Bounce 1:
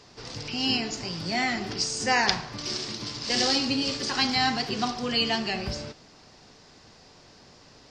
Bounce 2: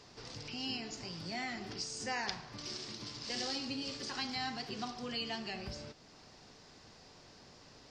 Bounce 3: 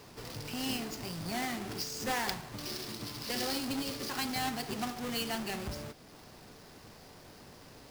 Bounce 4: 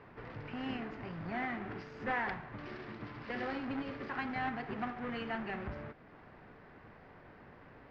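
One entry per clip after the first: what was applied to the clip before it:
downward compressor 1.5 to 1, threshold −48 dBFS, peak gain reduction 11 dB; level −4.5 dB
each half-wave held at its own peak
transistor ladder low-pass 2,300 Hz, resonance 35%; level +5 dB

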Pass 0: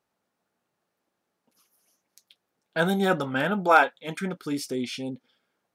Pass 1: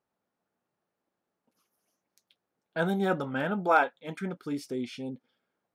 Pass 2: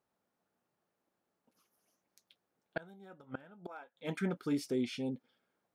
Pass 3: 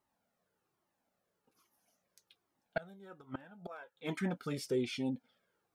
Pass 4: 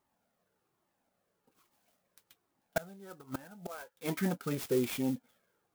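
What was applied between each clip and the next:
high-shelf EQ 2,400 Hz −8.5 dB; level −3.5 dB
gate with flip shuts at −23 dBFS, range −27 dB
flanger whose copies keep moving one way falling 1.2 Hz; level +6 dB
converter with an unsteady clock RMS 0.053 ms; level +3.5 dB

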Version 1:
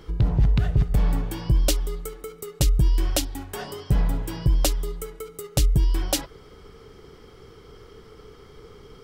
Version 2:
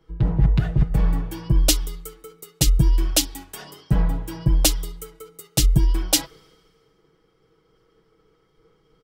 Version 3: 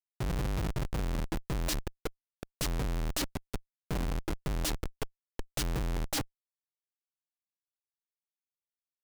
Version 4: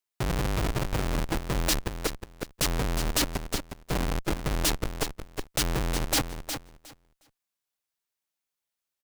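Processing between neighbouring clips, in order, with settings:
comb filter 6.2 ms, depth 58%; multiband upward and downward expander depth 70%
high-pass filter 120 Hz 6 dB per octave; comparator with hysteresis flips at −27 dBFS; level −4 dB
low-shelf EQ 310 Hz −5 dB; on a send: repeating echo 361 ms, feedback 17%, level −8.5 dB; on the sum: level +8 dB

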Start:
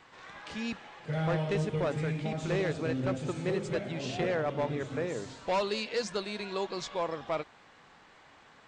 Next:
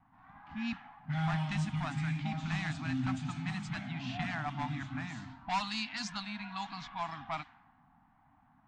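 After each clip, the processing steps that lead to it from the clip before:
low-pass that shuts in the quiet parts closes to 590 Hz, open at −26 dBFS
elliptic band-stop filter 270–740 Hz, stop band 40 dB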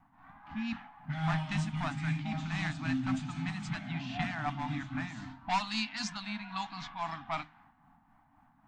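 amplitude tremolo 3.8 Hz, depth 44%
on a send at −14 dB: convolution reverb RT60 0.20 s, pre-delay 3 ms
on the sum: level +3 dB

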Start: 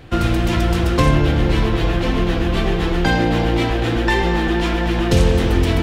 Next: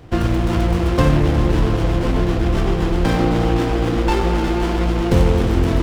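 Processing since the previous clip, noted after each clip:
echo with a time of its own for lows and highs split 440 Hz, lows 537 ms, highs 359 ms, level −12 dB
windowed peak hold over 17 samples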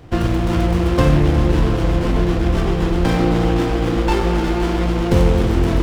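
flutter between parallel walls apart 6.9 metres, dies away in 0.2 s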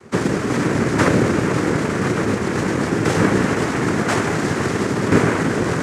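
cochlear-implant simulation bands 3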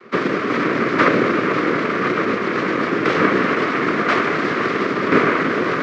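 loudspeaker in its box 270–4,300 Hz, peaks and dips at 840 Hz −9 dB, 1,200 Hz +7 dB, 2,200 Hz +4 dB
level +2 dB

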